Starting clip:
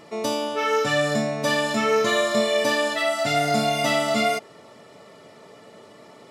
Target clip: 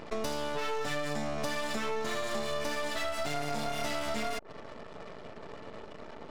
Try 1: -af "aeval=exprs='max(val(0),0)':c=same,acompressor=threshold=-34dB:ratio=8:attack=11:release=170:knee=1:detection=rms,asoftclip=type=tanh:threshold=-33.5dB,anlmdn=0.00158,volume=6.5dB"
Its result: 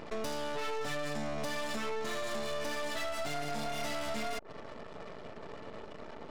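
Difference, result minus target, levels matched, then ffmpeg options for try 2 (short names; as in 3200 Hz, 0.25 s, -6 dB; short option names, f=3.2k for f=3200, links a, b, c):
soft clip: distortion +12 dB
-af "aeval=exprs='max(val(0),0)':c=same,acompressor=threshold=-34dB:ratio=8:attack=11:release=170:knee=1:detection=rms,asoftclip=type=tanh:threshold=-25dB,anlmdn=0.00158,volume=6.5dB"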